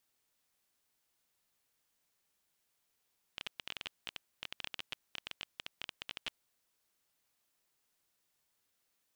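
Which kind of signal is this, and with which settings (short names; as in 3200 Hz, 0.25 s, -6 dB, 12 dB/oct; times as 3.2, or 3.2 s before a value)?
random clicks 15/s -22.5 dBFS 3.07 s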